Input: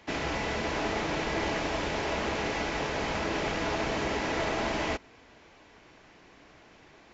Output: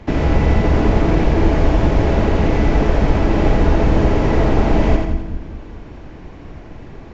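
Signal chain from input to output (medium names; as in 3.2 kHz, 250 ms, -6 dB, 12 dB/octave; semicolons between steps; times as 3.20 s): tilt EQ -4.5 dB/octave; in parallel at +2 dB: compression, threshold -28 dBFS, peak gain reduction 12 dB; on the sum: treble shelf 5.9 kHz +7 dB; two-band feedback delay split 320 Hz, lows 206 ms, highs 86 ms, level -4 dB; trim +3 dB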